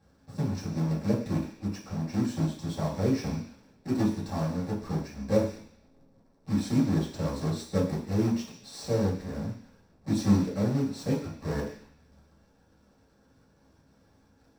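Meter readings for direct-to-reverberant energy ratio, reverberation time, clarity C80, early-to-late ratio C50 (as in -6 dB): -7.0 dB, 0.50 s, 10.0 dB, 7.0 dB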